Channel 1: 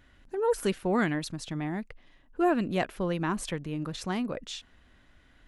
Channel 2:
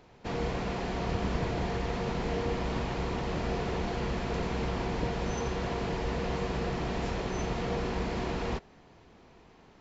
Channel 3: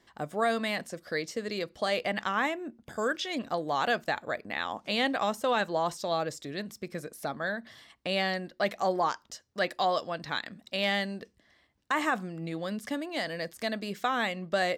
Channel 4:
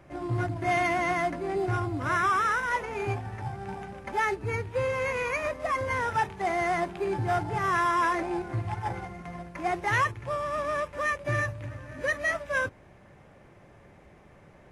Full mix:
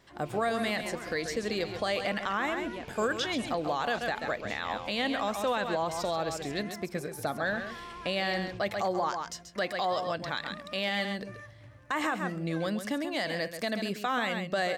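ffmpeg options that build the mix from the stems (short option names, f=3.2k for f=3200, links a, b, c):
-filter_complex "[0:a]highpass=350,acompressor=threshold=-30dB:ratio=6,volume=-8.5dB[a];[1:a]highshelf=f=2k:t=q:w=3:g=6.5,volume=-20dB,asplit=3[b][c][d];[b]atrim=end=6.63,asetpts=PTS-STARTPTS,afade=t=out:st=6.626:d=0.004:c=hsin[e];[c]atrim=start=6.63:end=7.45,asetpts=PTS-STARTPTS,volume=0[f];[d]atrim=start=7.45,asetpts=PTS-STARTPTS,afade=t=in:d=0.004:c=hsin[g];[e][f][g]concat=n=3:v=0:a=1[h];[2:a]volume=2.5dB,asplit=2[i][j];[j]volume=-9.5dB[k];[3:a]acompressor=threshold=-29dB:ratio=6,volume=-14dB[l];[k]aecho=0:1:134:1[m];[a][h][i][l][m]amix=inputs=5:normalize=0,alimiter=limit=-20.5dB:level=0:latency=1:release=110"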